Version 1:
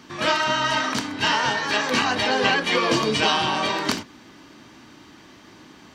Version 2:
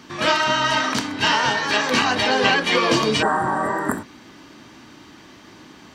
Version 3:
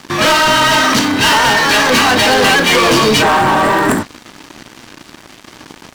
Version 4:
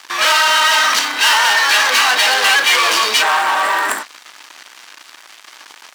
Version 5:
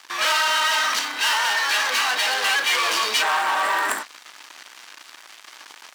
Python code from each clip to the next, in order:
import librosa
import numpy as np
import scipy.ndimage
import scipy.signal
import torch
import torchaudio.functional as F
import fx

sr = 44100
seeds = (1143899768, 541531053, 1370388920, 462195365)

y1 = fx.spec_repair(x, sr, seeds[0], start_s=3.25, length_s=0.94, low_hz=2000.0, high_hz=7200.0, source='after')
y1 = y1 * librosa.db_to_amplitude(2.5)
y2 = fx.leveller(y1, sr, passes=5)
y2 = y2 * librosa.db_to_amplitude(-3.0)
y3 = scipy.signal.sosfilt(scipy.signal.butter(2, 1000.0, 'highpass', fs=sr, output='sos'), y2)
y4 = fx.rider(y3, sr, range_db=10, speed_s=2.0)
y4 = y4 * librosa.db_to_amplitude(-8.0)